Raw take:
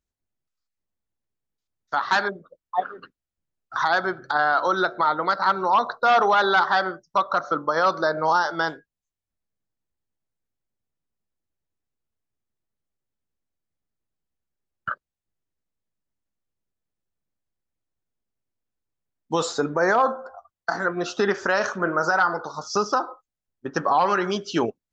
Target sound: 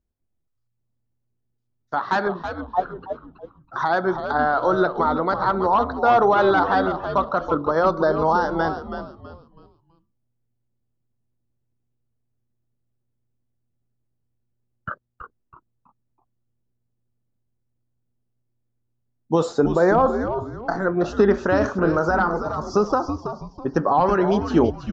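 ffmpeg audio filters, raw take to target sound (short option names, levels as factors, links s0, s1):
-filter_complex "[0:a]tiltshelf=f=970:g=8.5,asplit=5[s0][s1][s2][s3][s4];[s1]adelay=326,afreqshift=-120,volume=0.376[s5];[s2]adelay=652,afreqshift=-240,volume=0.124[s6];[s3]adelay=978,afreqshift=-360,volume=0.0407[s7];[s4]adelay=1304,afreqshift=-480,volume=0.0135[s8];[s0][s5][s6][s7][s8]amix=inputs=5:normalize=0"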